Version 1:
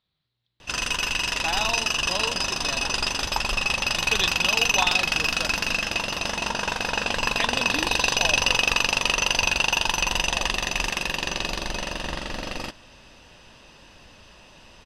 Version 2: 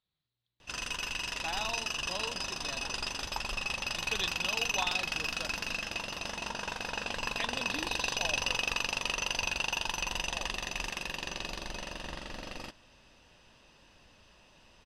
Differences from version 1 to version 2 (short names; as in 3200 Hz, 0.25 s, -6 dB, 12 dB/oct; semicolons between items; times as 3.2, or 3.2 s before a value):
speech -9.0 dB; background -10.5 dB